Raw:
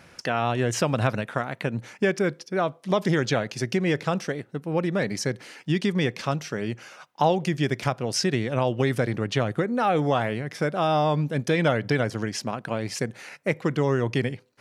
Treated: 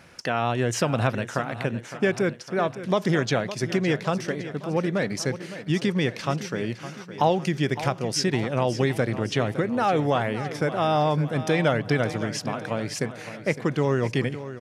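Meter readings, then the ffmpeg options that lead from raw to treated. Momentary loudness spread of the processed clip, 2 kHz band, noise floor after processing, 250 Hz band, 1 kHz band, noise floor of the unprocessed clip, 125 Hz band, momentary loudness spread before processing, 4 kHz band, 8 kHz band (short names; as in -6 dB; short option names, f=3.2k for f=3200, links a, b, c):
7 LU, +0.5 dB, -42 dBFS, +0.5 dB, +0.5 dB, -54 dBFS, 0.0 dB, 8 LU, +0.5 dB, +0.5 dB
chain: -af "aecho=1:1:561|1122|1683|2244|2805|3366:0.224|0.121|0.0653|0.0353|0.019|0.0103"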